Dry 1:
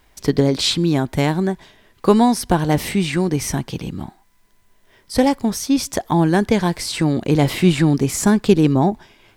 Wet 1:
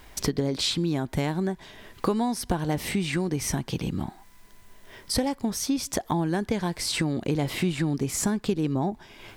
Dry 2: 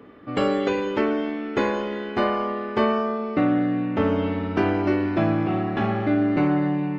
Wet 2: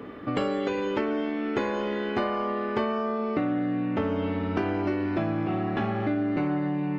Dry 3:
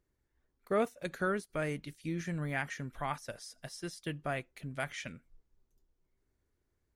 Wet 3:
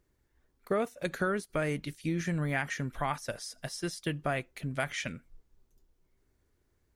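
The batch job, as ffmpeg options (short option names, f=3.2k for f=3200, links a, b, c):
-af "acompressor=threshold=-33dB:ratio=4,volume=6.5dB"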